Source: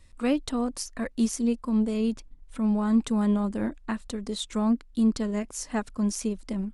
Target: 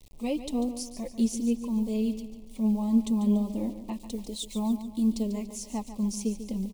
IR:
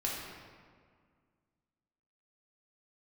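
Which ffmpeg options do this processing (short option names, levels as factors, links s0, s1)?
-filter_complex "[0:a]flanger=delay=3.2:depth=2.7:regen=21:speed=1.4:shape=triangular,acrusher=bits=8:mix=0:aa=0.000001,asuperstop=centerf=1500:order=4:qfactor=1,aecho=1:1:144|288|432|576|720:0.266|0.12|0.0539|0.0242|0.0109,asettb=1/sr,asplit=3[s0][s1][s2];[s0]atrim=end=3.904[s3];[s1]atrim=start=3.9:end=5.23,asetpts=PTS-STARTPTS,afade=t=in:d=0.004:c=qsin,afade=t=out:st=1.326:d=0.004:c=qsin,adynamicequalizer=threshold=0.00355:dfrequency=7200:dqfactor=0.7:tfrequency=7200:tqfactor=0.7:attack=5:release=100:ratio=0.375:range=3:mode=boostabove:tftype=highshelf[s4];[s2]atrim=start=5.226[s5];[s3][s4]acrossfade=d=0.004:c1=hsin:c2=qsin[s6];[s6][s5]acrossfade=d=0.004:c1=qsin:c2=hsin"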